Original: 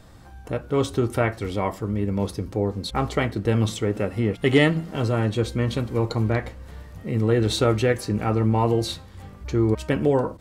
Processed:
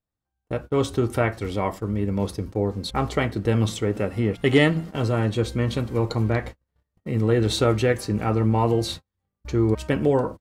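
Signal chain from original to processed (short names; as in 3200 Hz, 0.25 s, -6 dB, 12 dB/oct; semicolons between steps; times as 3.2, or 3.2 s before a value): gate -33 dBFS, range -40 dB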